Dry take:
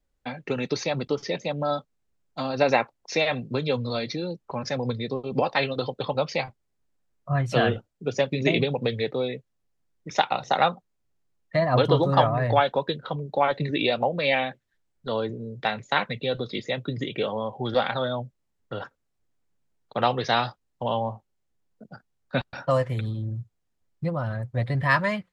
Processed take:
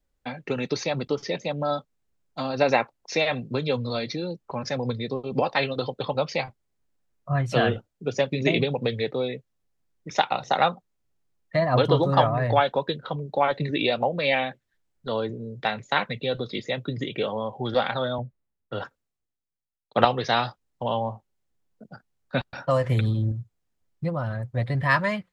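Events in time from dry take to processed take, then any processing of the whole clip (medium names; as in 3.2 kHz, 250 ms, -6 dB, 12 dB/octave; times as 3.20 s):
18.18–20.05 s: three bands expanded up and down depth 70%
22.84–23.32 s: gain +6 dB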